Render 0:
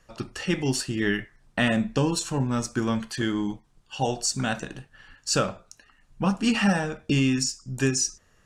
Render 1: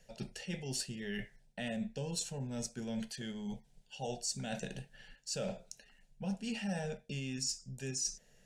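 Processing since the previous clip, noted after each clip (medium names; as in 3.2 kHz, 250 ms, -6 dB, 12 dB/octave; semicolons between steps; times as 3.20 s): reverse; compression 6:1, threshold -33 dBFS, peak gain reduction 15.5 dB; reverse; static phaser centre 310 Hz, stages 6; trim -1 dB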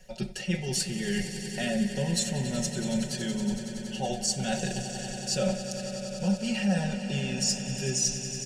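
comb 5.4 ms, depth 84%; on a send: echo with a slow build-up 93 ms, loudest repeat 5, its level -14 dB; on the sum: trim +6.5 dB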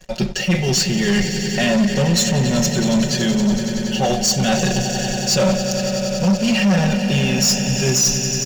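resampled via 16 kHz; waveshaping leveller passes 3; trim +3.5 dB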